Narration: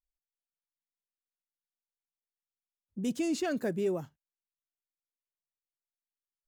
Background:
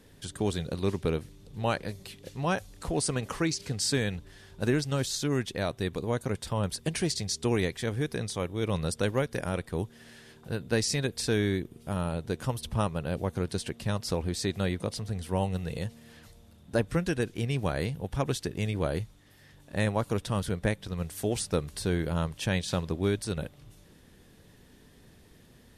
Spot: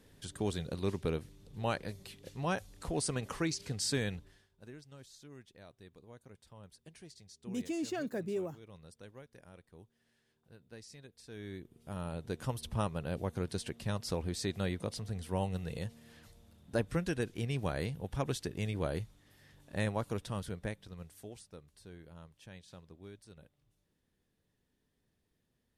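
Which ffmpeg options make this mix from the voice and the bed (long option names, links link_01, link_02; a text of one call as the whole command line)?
ffmpeg -i stem1.wav -i stem2.wav -filter_complex "[0:a]adelay=4500,volume=-5.5dB[link_01];[1:a]volume=13.5dB,afade=type=out:start_time=4.12:duration=0.37:silence=0.112202,afade=type=in:start_time=11.27:duration=1.22:silence=0.112202,afade=type=out:start_time=19.73:duration=1.73:silence=0.125893[link_02];[link_01][link_02]amix=inputs=2:normalize=0" out.wav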